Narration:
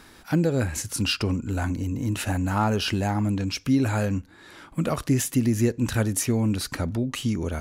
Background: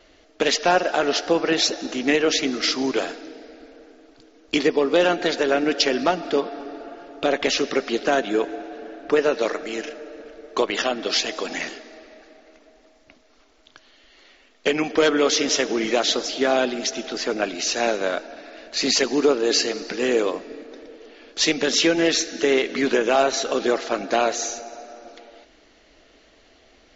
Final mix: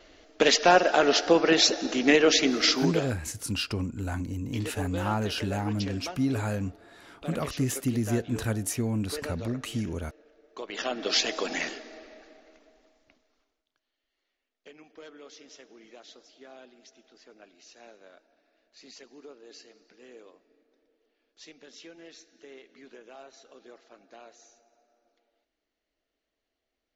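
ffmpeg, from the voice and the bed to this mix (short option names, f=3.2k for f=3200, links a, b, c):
-filter_complex "[0:a]adelay=2500,volume=-5.5dB[a];[1:a]volume=15.5dB,afade=t=out:st=2.69:d=0.51:silence=0.125893,afade=t=in:st=10.61:d=0.59:silence=0.158489,afade=t=out:st=11.97:d=1.68:silence=0.0446684[b];[a][b]amix=inputs=2:normalize=0"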